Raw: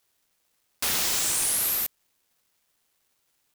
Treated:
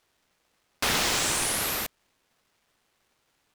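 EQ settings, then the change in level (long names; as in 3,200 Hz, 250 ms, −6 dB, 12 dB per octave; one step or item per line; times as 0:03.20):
high-shelf EQ 3,600 Hz −8 dB
high-shelf EQ 11,000 Hz −11.5 dB
+7.5 dB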